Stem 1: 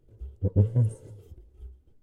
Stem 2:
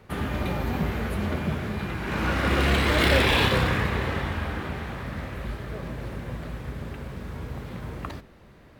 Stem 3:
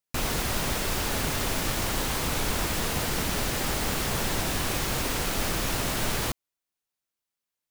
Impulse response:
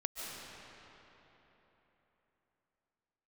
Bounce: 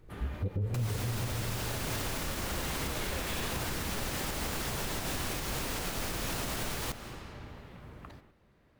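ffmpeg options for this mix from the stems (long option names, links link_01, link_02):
-filter_complex "[0:a]volume=3dB,asplit=2[link_01][link_02];[link_02]volume=-6.5dB[link_03];[1:a]volume=-14dB[link_04];[2:a]adelay=600,volume=-5dB,asplit=2[link_05][link_06];[link_06]volume=-10dB[link_07];[3:a]atrim=start_sample=2205[link_08];[link_03][link_07]amix=inputs=2:normalize=0[link_09];[link_09][link_08]afir=irnorm=-1:irlink=0[link_10];[link_01][link_04][link_05][link_10]amix=inputs=4:normalize=0,alimiter=level_in=0.5dB:limit=-24dB:level=0:latency=1:release=170,volume=-0.5dB"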